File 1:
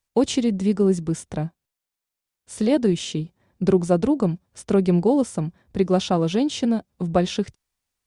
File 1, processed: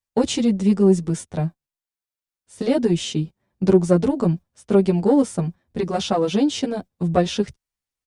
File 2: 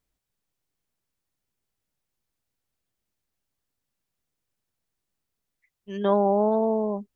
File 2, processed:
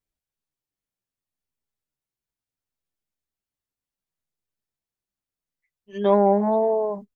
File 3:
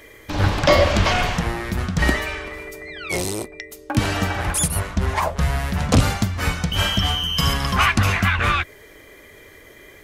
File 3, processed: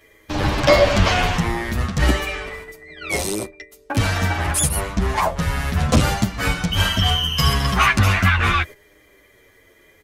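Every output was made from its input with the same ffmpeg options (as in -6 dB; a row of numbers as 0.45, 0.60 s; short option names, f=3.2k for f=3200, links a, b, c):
-filter_complex "[0:a]acontrast=53,agate=range=-10dB:threshold=-27dB:ratio=16:detection=peak,asplit=2[a][b];[b]adelay=9.1,afreqshift=-0.71[c];[a][c]amix=inputs=2:normalize=1,volume=-1dB"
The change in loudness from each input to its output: +1.5, +3.0, +1.5 LU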